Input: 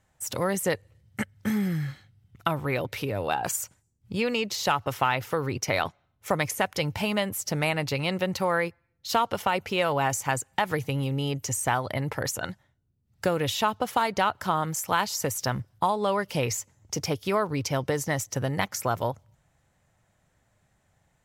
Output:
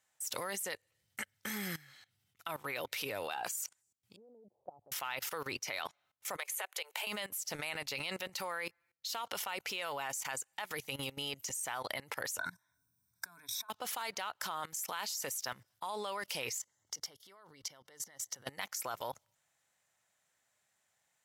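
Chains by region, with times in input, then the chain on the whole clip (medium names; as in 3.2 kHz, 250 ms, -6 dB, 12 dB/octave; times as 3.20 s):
4.16–4.92 s: steep low-pass 770 Hz 48 dB/octave + compression 1.5:1, threshold -50 dBFS
6.37–7.07 s: steep high-pass 370 Hz 96 dB/octave + peaking EQ 5.3 kHz -11.5 dB 0.34 oct + compression 12:1, threshold -31 dBFS
12.38–13.70 s: rippled EQ curve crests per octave 1.6, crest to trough 13 dB + compressor with a negative ratio -34 dBFS + static phaser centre 1.2 kHz, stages 4
16.58–18.47 s: treble shelf 6.6 kHz -5.5 dB + compression 20:1, threshold -36 dBFS + Butterworth band-stop 2.5 kHz, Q 5
whole clip: high-pass 1 kHz 6 dB/octave; treble shelf 2.5 kHz +7.5 dB; level held to a coarse grid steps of 20 dB; trim +1 dB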